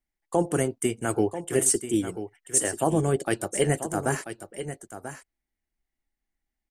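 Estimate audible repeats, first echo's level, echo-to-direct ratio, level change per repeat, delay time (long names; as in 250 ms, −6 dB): 1, −11.0 dB, −11.0 dB, repeats not evenly spaced, 988 ms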